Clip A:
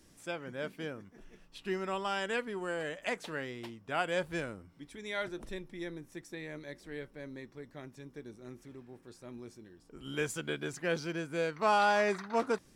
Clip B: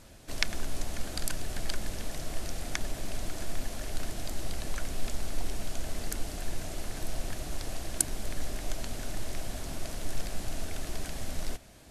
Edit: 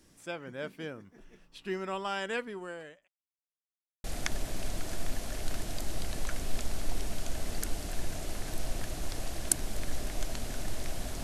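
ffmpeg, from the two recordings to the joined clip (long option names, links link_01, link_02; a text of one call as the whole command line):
ffmpeg -i cue0.wav -i cue1.wav -filter_complex "[0:a]apad=whole_dur=11.23,atrim=end=11.23,asplit=2[link_01][link_02];[link_01]atrim=end=3.08,asetpts=PTS-STARTPTS,afade=type=out:start_time=2.4:duration=0.68[link_03];[link_02]atrim=start=3.08:end=4.04,asetpts=PTS-STARTPTS,volume=0[link_04];[1:a]atrim=start=2.53:end=9.72,asetpts=PTS-STARTPTS,afade=type=in:duration=0.004:curve=hsin[link_05];[link_03][link_04][link_05]concat=n=3:v=0:a=1" out.wav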